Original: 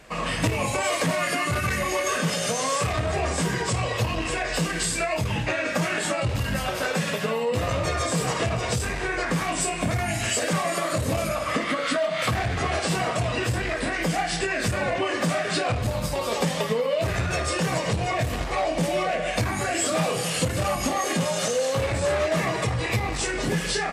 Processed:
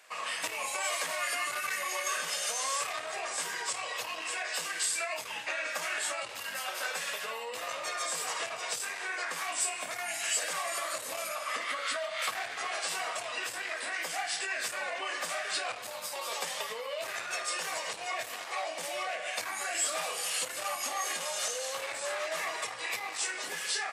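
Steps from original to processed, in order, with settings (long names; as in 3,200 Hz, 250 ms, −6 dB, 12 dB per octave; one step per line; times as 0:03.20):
high-pass filter 860 Hz 12 dB per octave
high-shelf EQ 7,800 Hz +6 dB
level −6 dB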